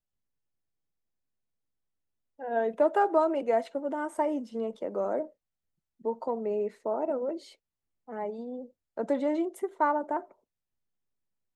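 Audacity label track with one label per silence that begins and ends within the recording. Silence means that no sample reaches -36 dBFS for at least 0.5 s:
5.250000	6.050000	silence
7.370000	8.090000	silence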